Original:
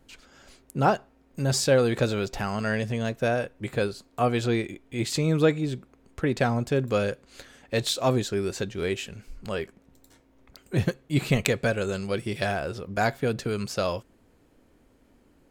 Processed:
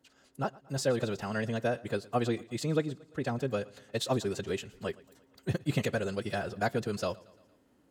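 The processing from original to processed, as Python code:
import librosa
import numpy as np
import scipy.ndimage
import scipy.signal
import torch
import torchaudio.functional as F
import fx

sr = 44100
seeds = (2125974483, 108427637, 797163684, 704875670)

y = fx.rider(x, sr, range_db=3, speed_s=2.0)
y = fx.stretch_vocoder(y, sr, factor=0.51)
y = scipy.signal.sosfilt(scipy.signal.butter(2, 94.0, 'highpass', fs=sr, output='sos'), y)
y = fx.notch(y, sr, hz=2300.0, q=11.0)
y = fx.echo_feedback(y, sr, ms=115, feedback_pct=56, wet_db=-22.5)
y = F.gain(torch.from_numpy(y), -5.0).numpy()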